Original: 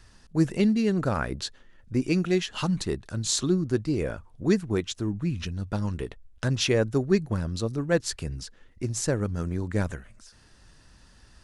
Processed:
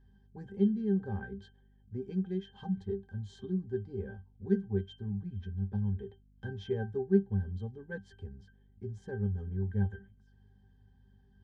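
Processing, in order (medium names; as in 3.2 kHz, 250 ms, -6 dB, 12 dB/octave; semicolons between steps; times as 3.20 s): pitch-class resonator G, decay 0.16 s; hum 50 Hz, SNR 28 dB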